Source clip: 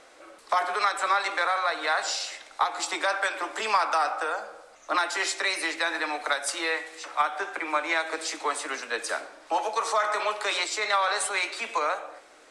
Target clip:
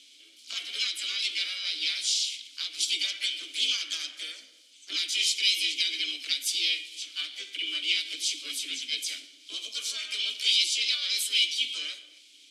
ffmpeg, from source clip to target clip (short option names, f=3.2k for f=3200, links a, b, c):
-filter_complex "[0:a]asplit=3[a][b][c];[b]asetrate=55563,aresample=44100,atempo=0.793701,volume=-1dB[d];[c]asetrate=66075,aresample=44100,atempo=0.66742,volume=-14dB[e];[a][d][e]amix=inputs=3:normalize=0,asplit=3[f][g][h];[f]bandpass=f=270:t=q:w=8,volume=0dB[i];[g]bandpass=f=2.29k:t=q:w=8,volume=-6dB[j];[h]bandpass=f=3.01k:t=q:w=8,volume=-9dB[k];[i][j][k]amix=inputs=3:normalize=0,aexciter=amount=14.5:drive=8.4:freq=3k,volume=-4dB"